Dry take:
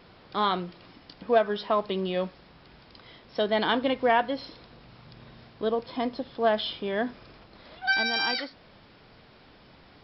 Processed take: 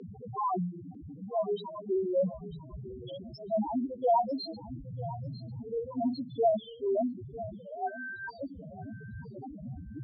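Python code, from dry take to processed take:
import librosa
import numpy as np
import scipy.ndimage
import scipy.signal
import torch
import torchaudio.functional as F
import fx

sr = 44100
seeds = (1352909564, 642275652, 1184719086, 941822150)

p1 = x + 0.5 * 10.0 ** (-28.0 / 20.0) * np.sign(x)
p2 = scipy.signal.sosfilt(scipy.signal.butter(4, 46.0, 'highpass', fs=sr, output='sos'), p1)
p3 = fx.peak_eq(p2, sr, hz=2100.0, db=-6.5, octaves=0.45)
p4 = fx.rider(p3, sr, range_db=10, speed_s=2.0)
p5 = p3 + (p4 * 10.0 ** (-2.5 / 20.0))
p6 = p5 * (1.0 - 0.38 / 2.0 + 0.38 / 2.0 * np.cos(2.0 * np.pi * 3.6 * (np.arange(len(p5)) / sr)))
p7 = fx.auto_swell(p6, sr, attack_ms=233.0)
p8 = fx.spec_topn(p7, sr, count=1)
p9 = p8 + fx.echo_feedback(p8, sr, ms=948, feedback_pct=21, wet_db=-15.5, dry=0)
y = fx.filter_sweep_lowpass(p9, sr, from_hz=4700.0, to_hz=920.0, start_s=5.94, end_s=6.96, q=1.0)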